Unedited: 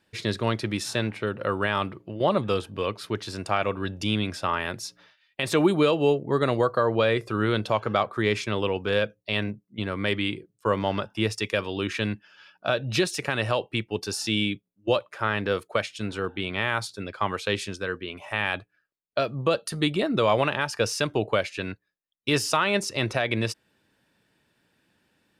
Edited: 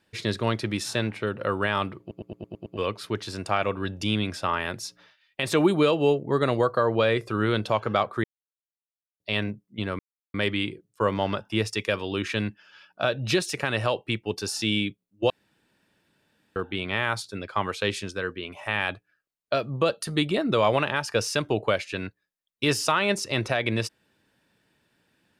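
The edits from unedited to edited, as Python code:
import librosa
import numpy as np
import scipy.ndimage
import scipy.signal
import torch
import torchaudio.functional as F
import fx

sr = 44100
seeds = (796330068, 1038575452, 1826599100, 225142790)

y = fx.edit(x, sr, fx.stutter_over(start_s=2.0, slice_s=0.11, count=7),
    fx.silence(start_s=8.24, length_s=0.96),
    fx.insert_silence(at_s=9.99, length_s=0.35),
    fx.room_tone_fill(start_s=14.95, length_s=1.26), tone=tone)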